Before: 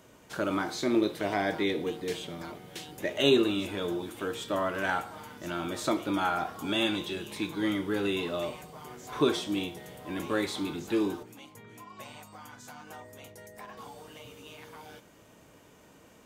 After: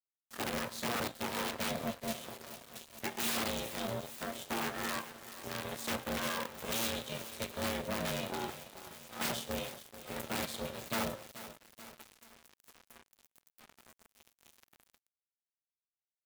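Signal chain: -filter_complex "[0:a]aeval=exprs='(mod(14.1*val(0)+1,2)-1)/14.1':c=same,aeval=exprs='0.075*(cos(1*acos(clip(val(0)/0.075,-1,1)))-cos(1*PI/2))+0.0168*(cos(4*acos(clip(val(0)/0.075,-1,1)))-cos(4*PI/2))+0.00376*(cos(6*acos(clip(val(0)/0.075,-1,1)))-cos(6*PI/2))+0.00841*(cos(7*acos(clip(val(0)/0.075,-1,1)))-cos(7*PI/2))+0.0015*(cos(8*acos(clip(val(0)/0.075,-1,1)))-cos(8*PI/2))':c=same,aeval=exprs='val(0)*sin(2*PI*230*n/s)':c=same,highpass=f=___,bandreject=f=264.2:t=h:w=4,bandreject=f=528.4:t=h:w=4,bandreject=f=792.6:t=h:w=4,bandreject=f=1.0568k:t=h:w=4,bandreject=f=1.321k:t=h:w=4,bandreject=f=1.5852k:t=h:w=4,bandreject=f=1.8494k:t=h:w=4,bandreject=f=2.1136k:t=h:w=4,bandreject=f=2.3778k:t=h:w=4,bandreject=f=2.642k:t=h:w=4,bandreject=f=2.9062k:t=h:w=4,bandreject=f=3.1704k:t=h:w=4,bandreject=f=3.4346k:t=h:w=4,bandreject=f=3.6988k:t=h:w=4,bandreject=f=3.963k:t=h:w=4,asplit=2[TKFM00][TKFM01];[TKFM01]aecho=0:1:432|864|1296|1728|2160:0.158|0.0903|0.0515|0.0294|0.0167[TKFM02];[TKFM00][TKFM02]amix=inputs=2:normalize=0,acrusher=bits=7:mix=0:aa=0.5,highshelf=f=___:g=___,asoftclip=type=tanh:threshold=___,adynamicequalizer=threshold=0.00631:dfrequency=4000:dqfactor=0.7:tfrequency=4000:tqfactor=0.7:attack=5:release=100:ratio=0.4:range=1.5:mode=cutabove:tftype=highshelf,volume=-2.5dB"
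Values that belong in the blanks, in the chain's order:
110, 8.8k, 10, -23dB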